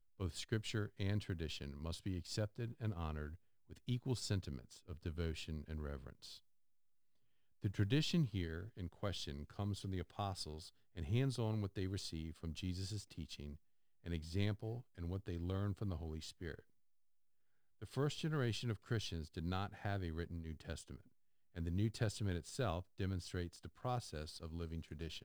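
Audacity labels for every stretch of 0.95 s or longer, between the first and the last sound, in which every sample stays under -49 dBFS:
6.370000	7.640000	silence
16.590000	17.820000	silence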